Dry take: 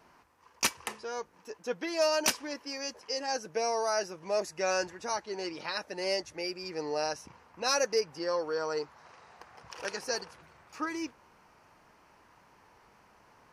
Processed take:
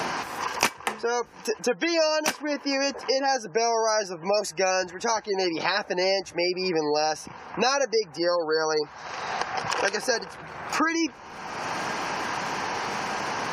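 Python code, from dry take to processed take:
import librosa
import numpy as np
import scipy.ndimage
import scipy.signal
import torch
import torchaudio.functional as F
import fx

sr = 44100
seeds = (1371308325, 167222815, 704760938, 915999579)

y = fx.spec_gate(x, sr, threshold_db=-30, keep='strong')
y = fx.small_body(y, sr, hz=(770.0, 1600.0), ring_ms=45, db=6)
y = fx.band_squash(y, sr, depth_pct=100)
y = y * librosa.db_to_amplitude(7.0)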